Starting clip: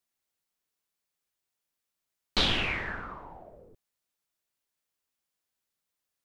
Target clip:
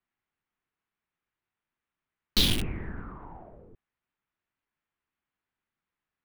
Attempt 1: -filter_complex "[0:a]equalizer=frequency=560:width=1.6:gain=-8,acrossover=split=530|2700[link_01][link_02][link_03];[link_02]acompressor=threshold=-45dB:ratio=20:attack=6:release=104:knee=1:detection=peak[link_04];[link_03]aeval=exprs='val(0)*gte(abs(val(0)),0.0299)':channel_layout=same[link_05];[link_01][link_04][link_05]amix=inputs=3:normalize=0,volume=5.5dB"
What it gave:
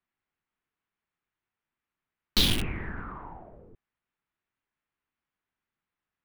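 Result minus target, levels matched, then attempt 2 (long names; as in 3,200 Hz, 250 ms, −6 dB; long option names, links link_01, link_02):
downward compressor: peak gain reduction −6.5 dB
-filter_complex "[0:a]equalizer=frequency=560:width=1.6:gain=-8,acrossover=split=530|2700[link_01][link_02][link_03];[link_02]acompressor=threshold=-52dB:ratio=20:attack=6:release=104:knee=1:detection=peak[link_04];[link_03]aeval=exprs='val(0)*gte(abs(val(0)),0.0299)':channel_layout=same[link_05];[link_01][link_04][link_05]amix=inputs=3:normalize=0,volume=5.5dB"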